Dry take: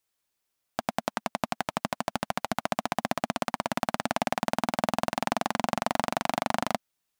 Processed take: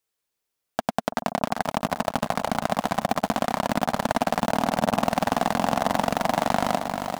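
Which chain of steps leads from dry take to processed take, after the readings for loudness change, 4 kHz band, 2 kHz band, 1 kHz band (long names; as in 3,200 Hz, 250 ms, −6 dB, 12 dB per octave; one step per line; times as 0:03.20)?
+5.0 dB, +3.0 dB, +3.0 dB, +5.5 dB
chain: parametric band 450 Hz +6 dB 0.3 octaves
in parallel at −1 dB: brickwall limiter −18.5 dBFS, peak gain reduction 11.5 dB
on the sum: leveller curve on the samples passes 2
on a send: delay that swaps between a low-pass and a high-pass 333 ms, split 1,100 Hz, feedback 56%, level −12 dB
on the sum: feedback echo at a low word length 394 ms, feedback 55%, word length 6 bits, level −6 dB
level −3 dB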